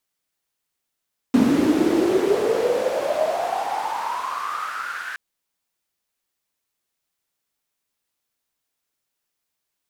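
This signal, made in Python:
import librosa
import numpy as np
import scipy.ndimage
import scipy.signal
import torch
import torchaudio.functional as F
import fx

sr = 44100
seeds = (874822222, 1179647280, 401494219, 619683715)

y = fx.riser_noise(sr, seeds[0], length_s=3.82, colour='white', kind='bandpass', start_hz=250.0, end_hz=1600.0, q=9.8, swell_db=-23.5, law='exponential')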